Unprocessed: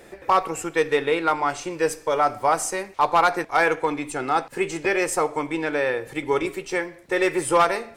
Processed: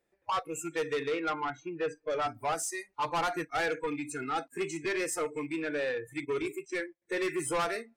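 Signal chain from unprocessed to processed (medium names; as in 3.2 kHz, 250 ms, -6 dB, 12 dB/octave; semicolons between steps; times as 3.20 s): rattle on loud lows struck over -33 dBFS, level -28 dBFS; 1.12–2.10 s: low-pass 2.9 kHz 12 dB/octave; 6.25–7.02 s: gate -34 dBFS, range -17 dB; spectral noise reduction 27 dB; 2.88–3.54 s: bass shelf 150 Hz +10.5 dB; saturation -20.5 dBFS, distortion -9 dB; trim -5.5 dB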